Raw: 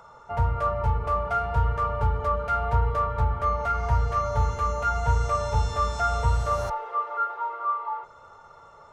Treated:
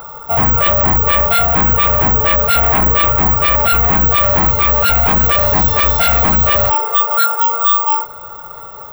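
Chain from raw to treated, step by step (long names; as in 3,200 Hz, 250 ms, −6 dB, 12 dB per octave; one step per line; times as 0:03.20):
notch filter 6,700 Hz, Q 5.3
sine wavefolder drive 13 dB, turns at −10 dBFS
bad sample-rate conversion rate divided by 2×, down filtered, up zero stuff
level −1.5 dB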